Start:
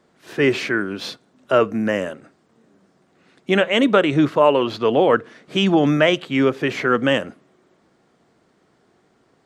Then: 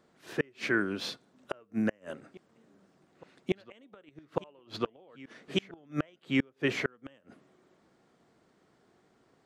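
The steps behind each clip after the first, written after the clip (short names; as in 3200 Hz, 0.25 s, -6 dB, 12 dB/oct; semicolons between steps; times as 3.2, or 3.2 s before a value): flipped gate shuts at -9 dBFS, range -35 dB; reverse echo 1.147 s -22 dB; gain -6.5 dB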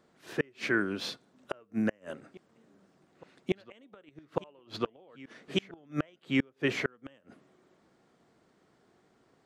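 nothing audible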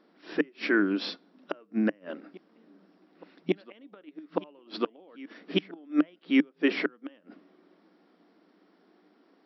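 FFT band-pass 170–5700 Hz; bell 300 Hz +9.5 dB 0.26 oct; gain +2 dB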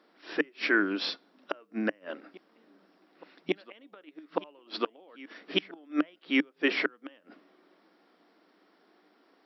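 HPF 600 Hz 6 dB/oct; gain +3 dB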